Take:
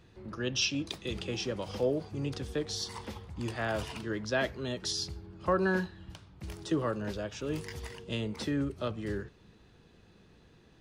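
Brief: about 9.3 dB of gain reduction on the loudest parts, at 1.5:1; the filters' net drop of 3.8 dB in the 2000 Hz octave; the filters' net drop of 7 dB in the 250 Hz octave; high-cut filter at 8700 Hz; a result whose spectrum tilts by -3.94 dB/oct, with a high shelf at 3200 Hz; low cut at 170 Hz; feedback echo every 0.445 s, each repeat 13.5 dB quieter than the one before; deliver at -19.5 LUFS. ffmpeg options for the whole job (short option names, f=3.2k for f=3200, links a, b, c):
-af "highpass=170,lowpass=8.7k,equalizer=f=250:t=o:g=-8.5,equalizer=f=2k:t=o:g=-3.5,highshelf=f=3.2k:g=-4.5,acompressor=threshold=-53dB:ratio=1.5,aecho=1:1:445|890:0.211|0.0444,volume=26dB"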